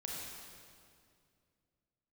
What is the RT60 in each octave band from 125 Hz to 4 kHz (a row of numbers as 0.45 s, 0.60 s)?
3.0 s, 2.8 s, 2.5 s, 2.1 s, 2.0 s, 1.9 s